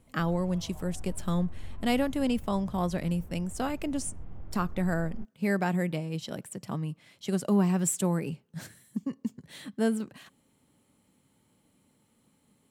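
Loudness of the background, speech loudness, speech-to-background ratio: -48.0 LUFS, -31.0 LUFS, 17.0 dB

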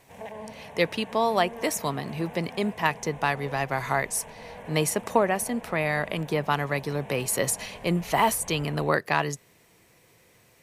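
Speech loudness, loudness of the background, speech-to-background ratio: -27.0 LUFS, -43.5 LUFS, 16.5 dB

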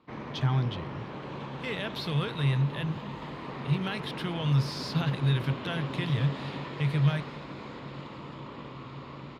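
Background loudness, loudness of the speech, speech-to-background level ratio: -39.0 LUFS, -30.0 LUFS, 9.0 dB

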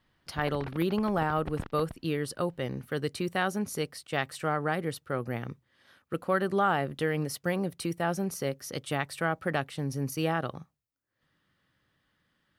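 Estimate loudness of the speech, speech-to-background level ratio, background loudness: -31.5 LUFS, 13.5 dB, -45.0 LUFS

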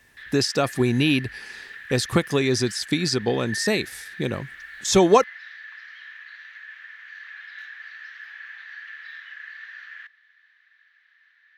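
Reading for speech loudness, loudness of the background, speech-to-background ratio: -22.5 LUFS, -38.5 LUFS, 16.0 dB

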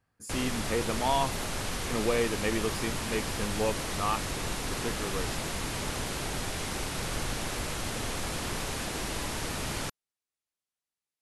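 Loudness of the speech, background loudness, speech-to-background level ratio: -33.0 LUFS, -33.5 LUFS, 0.5 dB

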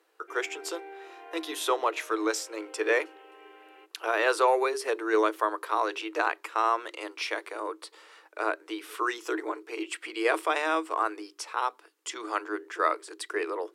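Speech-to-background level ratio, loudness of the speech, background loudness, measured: 18.5 dB, -30.0 LUFS, -48.5 LUFS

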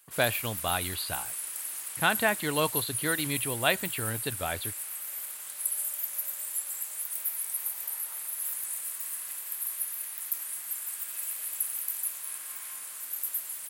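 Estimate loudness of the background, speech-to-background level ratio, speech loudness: -32.5 LUFS, 2.0 dB, -30.5 LUFS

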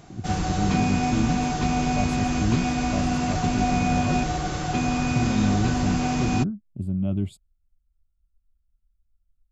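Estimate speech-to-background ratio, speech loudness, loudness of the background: -3.5 dB, -28.5 LUFS, -25.0 LUFS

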